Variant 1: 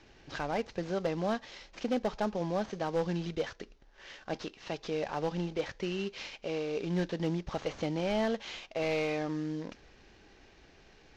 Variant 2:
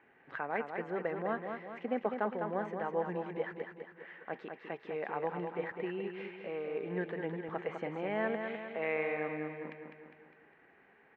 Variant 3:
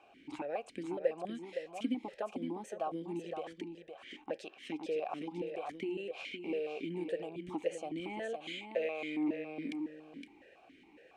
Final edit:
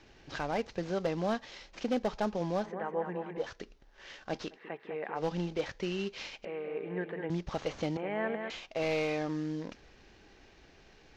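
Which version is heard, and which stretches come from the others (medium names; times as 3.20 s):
1
2.66–3.44 s: from 2, crossfade 0.16 s
4.55–5.19 s: from 2, crossfade 0.10 s
6.45–7.30 s: from 2
7.97–8.50 s: from 2
not used: 3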